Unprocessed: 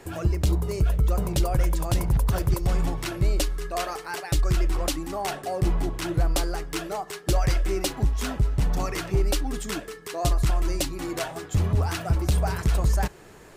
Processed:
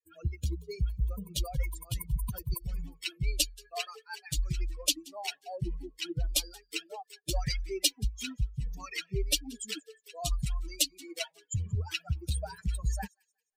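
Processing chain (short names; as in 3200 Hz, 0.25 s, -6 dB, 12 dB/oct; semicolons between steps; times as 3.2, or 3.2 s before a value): per-bin expansion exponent 3; resonant high shelf 2000 Hz +11 dB, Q 1.5; thin delay 0.179 s, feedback 32%, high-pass 2500 Hz, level -23.5 dB; gain -4 dB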